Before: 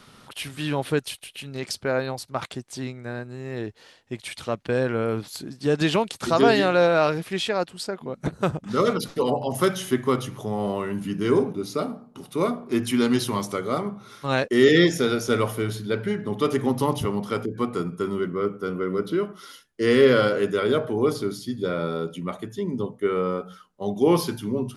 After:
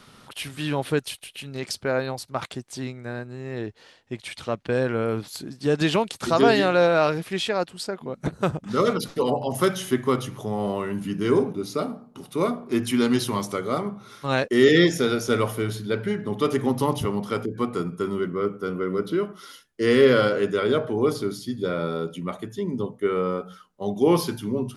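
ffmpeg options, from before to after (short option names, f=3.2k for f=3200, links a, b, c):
-filter_complex "[0:a]asettb=1/sr,asplit=3[a][b][c];[a]atrim=end=3.244[d];[b]atrim=start=3.24:end=4.72,asetpts=PTS-STARTPTS,afade=t=in:d=0.004:c=qsin,afade=t=out:st=1.476:d=0.004:c=qsin,highshelf=f=9.9k:g=-8.5[e];[c]atrim=start=4.716[f];[d][e]acrossfade=d=0.004:c1=hsin:c2=qsin[g];[g][f]acrossfade=d=0.004:c1=qsin:c2=hsin,asettb=1/sr,asplit=3[h][i][j];[h]atrim=end=20.284[k];[i]atrim=start=20.28:end=21.04,asetpts=PTS-STARTPTS,afade=t=in:d=0.004:c=qsin,afade=t=out:st=0.756:d=0.004:c=qsin,lowpass=9.2k[l];[j]atrim=start=21.036[m];[k][l]acrossfade=d=0.004:c1=hsin:c2=qsin[n];[n][m]acrossfade=d=0.004:c1=qsin:c2=hsin"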